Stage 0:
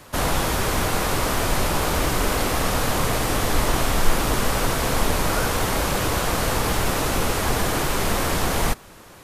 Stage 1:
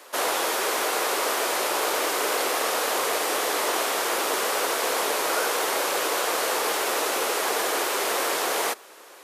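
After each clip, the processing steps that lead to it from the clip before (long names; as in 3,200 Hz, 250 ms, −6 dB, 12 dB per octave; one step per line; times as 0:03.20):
Chebyshev high-pass filter 400 Hz, order 3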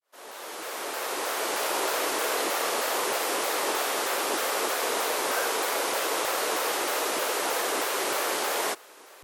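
fade in at the beginning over 1.69 s
pitch modulation by a square or saw wave saw down 3.2 Hz, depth 250 cents
level −2.5 dB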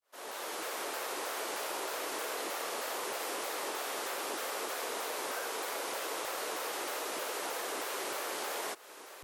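downward compressor 6 to 1, threshold −35 dBFS, peak gain reduction 11 dB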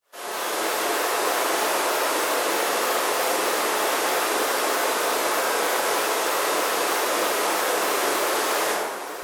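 dense smooth reverb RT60 1.9 s, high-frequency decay 0.5×, DRR −6 dB
level +7.5 dB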